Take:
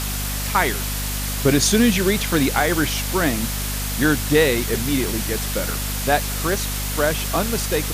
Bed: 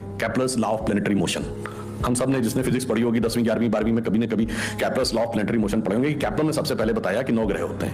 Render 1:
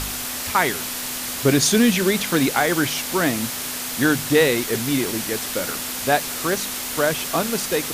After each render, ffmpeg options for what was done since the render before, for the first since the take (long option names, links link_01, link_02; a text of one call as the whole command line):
ffmpeg -i in.wav -af "bandreject=frequency=50:width_type=h:width=4,bandreject=frequency=100:width_type=h:width=4,bandreject=frequency=150:width_type=h:width=4,bandreject=frequency=200:width_type=h:width=4" out.wav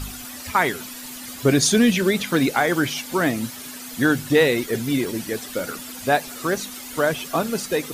ffmpeg -i in.wav -af "afftdn=noise_reduction=12:noise_floor=-29" out.wav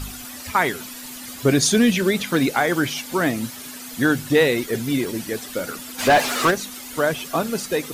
ffmpeg -i in.wav -filter_complex "[0:a]asplit=3[link_01][link_02][link_03];[link_01]afade=type=out:start_time=5.98:duration=0.02[link_04];[link_02]asplit=2[link_05][link_06];[link_06]highpass=frequency=720:poles=1,volume=26dB,asoftclip=type=tanh:threshold=-7dB[link_07];[link_05][link_07]amix=inputs=2:normalize=0,lowpass=frequency=2600:poles=1,volume=-6dB,afade=type=in:start_time=5.98:duration=0.02,afade=type=out:start_time=6.5:duration=0.02[link_08];[link_03]afade=type=in:start_time=6.5:duration=0.02[link_09];[link_04][link_08][link_09]amix=inputs=3:normalize=0" out.wav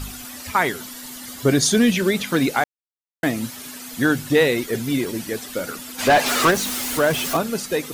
ffmpeg -i in.wav -filter_complex "[0:a]asettb=1/sr,asplit=3[link_01][link_02][link_03];[link_01]atrim=end=0.684[link_04];[link_02]atrim=start=0.68:end=1.81,asetpts=PTS-STARTPTS,afade=type=in:duration=0.004:curve=qsin,afade=type=out:start_time=1.126:duration=0.004:curve=qsin,bandreject=frequency=2500:width=10[link_05];[link_03]atrim=start=1.806[link_06];[link_04][link_05]acrossfade=duration=0.004:curve1=hsin:curve2=qsin[link_07];[link_07][link_06]acrossfade=duration=0.004:curve1=qsin:curve2=hsin,asettb=1/sr,asplit=3[link_08][link_09][link_10];[link_08]atrim=end=6.264[link_11];[link_09]atrim=start=6.26:end=7.37,asetpts=PTS-STARTPTS,afade=type=in:duration=0.004:curve=qsin,afade=type=out:start_time=1.106:duration=0.004:curve=qsin,aeval=exprs='val(0)+0.5*0.0708*sgn(val(0))':channel_layout=same[link_12];[link_10]atrim=start=7.366[link_13];[link_11][link_12]acrossfade=duration=0.004:curve1=hsin:curve2=qsin[link_14];[link_14][link_13]acrossfade=duration=0.004:curve1=qsin:curve2=hsin,asplit=3[link_15][link_16][link_17];[link_15]atrim=end=2.64,asetpts=PTS-STARTPTS,afade=type=out:start_time=2.636:duration=0.004:curve=hsin[link_18];[link_16]atrim=start=2.64:end=3.23,asetpts=PTS-STARTPTS,volume=0[link_19];[link_17]atrim=start=3.23,asetpts=PTS-STARTPTS,afade=type=in:duration=0.004:curve=hsin[link_20];[link_18][link_19][link_20]concat=n=3:v=0:a=1" out.wav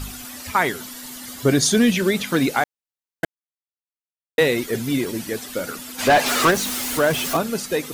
ffmpeg -i in.wav -filter_complex "[0:a]asplit=3[link_01][link_02][link_03];[link_01]atrim=end=3.25,asetpts=PTS-STARTPTS,afade=type=out:start_time=3.246:duration=0.004:curve=hsin[link_04];[link_02]atrim=start=3.25:end=4.38,asetpts=PTS-STARTPTS,volume=0[link_05];[link_03]atrim=start=4.38,asetpts=PTS-STARTPTS,afade=type=in:duration=0.004:curve=hsin[link_06];[link_04][link_05][link_06]concat=n=3:v=0:a=1" out.wav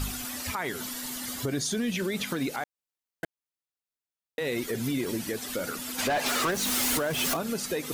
ffmpeg -i in.wav -af "acompressor=threshold=-20dB:ratio=6,alimiter=limit=-20.5dB:level=0:latency=1:release=193" out.wav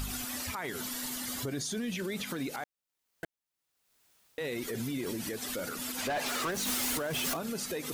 ffmpeg -i in.wav -af "alimiter=level_in=3dB:limit=-24dB:level=0:latency=1:release=91,volume=-3dB,acompressor=mode=upward:threshold=-45dB:ratio=2.5" out.wav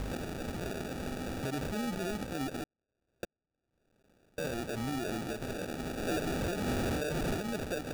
ffmpeg -i in.wav -af "acrusher=samples=42:mix=1:aa=0.000001" out.wav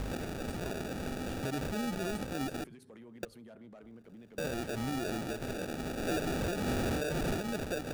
ffmpeg -i in.wav -i bed.wav -filter_complex "[1:a]volume=-31dB[link_01];[0:a][link_01]amix=inputs=2:normalize=0" out.wav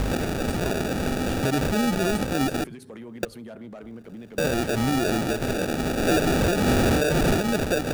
ffmpeg -i in.wav -af "volume=12dB" out.wav